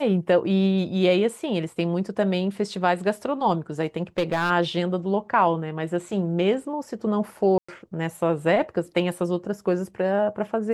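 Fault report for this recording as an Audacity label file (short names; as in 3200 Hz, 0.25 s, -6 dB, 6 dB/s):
3.970000	4.510000	clipped -17.5 dBFS
7.580000	7.680000	gap 0.105 s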